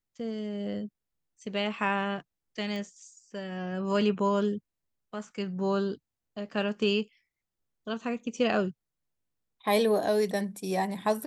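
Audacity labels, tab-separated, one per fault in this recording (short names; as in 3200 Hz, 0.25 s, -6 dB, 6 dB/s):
2.760000	2.760000	pop -25 dBFS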